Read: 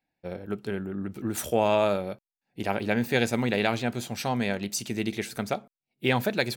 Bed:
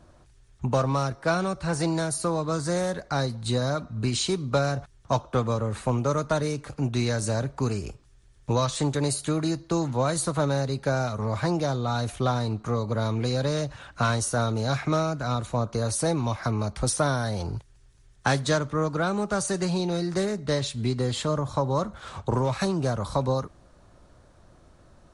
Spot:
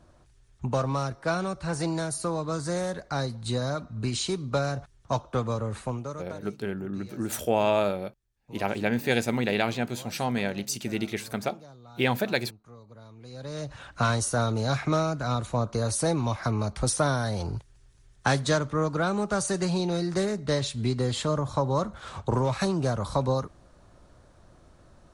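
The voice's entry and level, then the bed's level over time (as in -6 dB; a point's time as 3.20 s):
5.95 s, -0.5 dB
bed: 5.77 s -3 dB
6.55 s -22.5 dB
13.17 s -22.5 dB
13.78 s -0.5 dB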